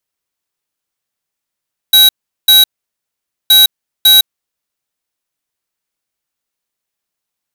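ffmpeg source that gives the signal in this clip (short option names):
-f lavfi -i "aevalsrc='0.531*(2*lt(mod(3870*t,1),0.5)-1)*clip(min(mod(mod(t,1.57),0.55),0.16-mod(mod(t,1.57),0.55))/0.005,0,1)*lt(mod(t,1.57),1.1)':d=3.14:s=44100"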